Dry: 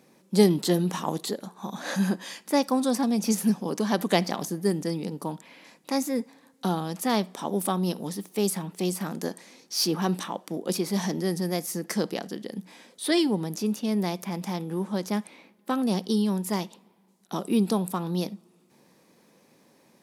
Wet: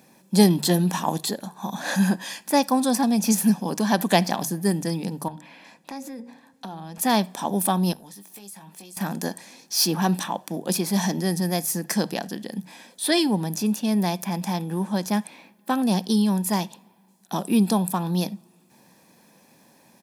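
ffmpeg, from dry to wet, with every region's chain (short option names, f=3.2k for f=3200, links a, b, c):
-filter_complex "[0:a]asettb=1/sr,asplit=3[a][b][c];[a]atrim=end=5.284[d];[b]atrim=start=5.28:end=6.98,asetpts=PTS-STARTPTS,afade=t=in:d=0.004:c=qsin,afade=t=out:st=1.696:d=0.004:c=qsin,highshelf=f=6.4k:g=-12,bandreject=f=60:t=h:w=6,bandreject=f=120:t=h:w=6,bandreject=f=180:t=h:w=6,bandreject=f=240:t=h:w=6,bandreject=f=300:t=h:w=6,bandreject=f=360:t=h:w=6,bandreject=f=420:t=h:w=6,bandreject=f=480:t=h:w=6,bandreject=f=540:t=h:w=6,acompressor=threshold=-37dB:ratio=5:attack=3.2:release=140:knee=1:detection=peak[e];[c]atrim=start=6.976[f];[d][e]acrossfade=d=0.004:c1=hsin:c2=qsin[g];[g][f]acrossfade=d=0.004:c1=qsin:c2=hsin,asettb=1/sr,asplit=3[h][i][j];[h]atrim=end=7.934[k];[i]atrim=start=7.93:end=8.97,asetpts=PTS-STARTPTS,afade=t=in:d=0.004:c=qsin,afade=t=out:st=1.036:d=0.004:c=qsin,lowshelf=f=470:g=-8,acompressor=threshold=-48dB:ratio=4:attack=3.2:release=140:knee=1:detection=peak,asplit=2[l][m];[m]adelay=20,volume=-8dB[n];[l][n]amix=inputs=2:normalize=0,atrim=end_sample=45864[o];[j]atrim=start=8.966[p];[k][o]acrossfade=d=0.004:c1=hsin:c2=qsin[q];[q][p]acrossfade=d=0.004:c1=qsin:c2=hsin,highshelf=f=11k:g=7.5,bandreject=f=50:t=h:w=6,bandreject=f=100:t=h:w=6,bandreject=f=150:t=h:w=6,aecho=1:1:1.2:0.43,volume=3.5dB"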